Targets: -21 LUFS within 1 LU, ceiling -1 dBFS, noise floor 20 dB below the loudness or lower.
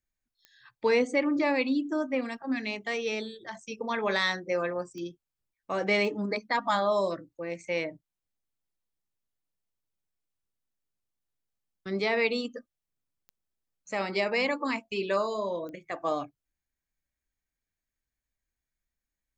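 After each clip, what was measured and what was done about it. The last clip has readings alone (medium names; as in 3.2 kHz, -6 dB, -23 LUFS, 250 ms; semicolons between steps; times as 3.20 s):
clicks found 5; loudness -29.5 LUFS; peak level -14.0 dBFS; loudness target -21.0 LUFS
-> de-click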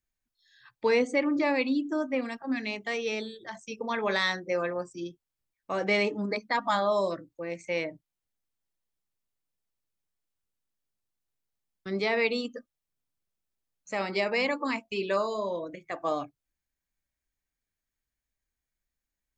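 clicks found 0; loudness -29.5 LUFS; peak level -14.0 dBFS; loudness target -21.0 LUFS
-> trim +8.5 dB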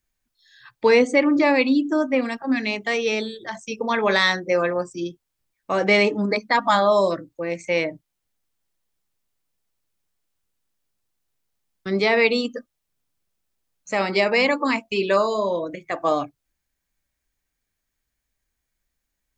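loudness -21.0 LUFS; peak level -5.5 dBFS; noise floor -80 dBFS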